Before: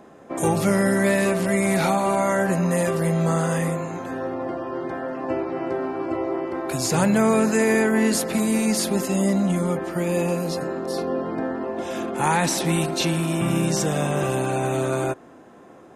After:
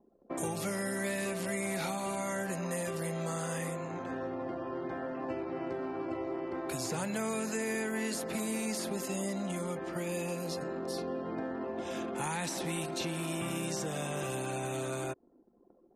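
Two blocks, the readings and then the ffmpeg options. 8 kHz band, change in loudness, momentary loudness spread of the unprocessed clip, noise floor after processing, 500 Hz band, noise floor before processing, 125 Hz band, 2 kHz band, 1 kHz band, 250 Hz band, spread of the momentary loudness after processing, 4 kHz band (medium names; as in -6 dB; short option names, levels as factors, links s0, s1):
-10.0 dB, -13.0 dB, 10 LU, -64 dBFS, -13.0 dB, -47 dBFS, -15.0 dB, -11.5 dB, -13.0 dB, -14.0 dB, 4 LU, -10.5 dB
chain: -filter_complex "[0:a]anlmdn=1,acrossover=split=290|2300[s0][s1][s2];[s0]acompressor=threshold=0.0178:ratio=4[s3];[s1]acompressor=threshold=0.0282:ratio=4[s4];[s2]acompressor=threshold=0.0224:ratio=4[s5];[s3][s4][s5]amix=inputs=3:normalize=0,volume=0.501"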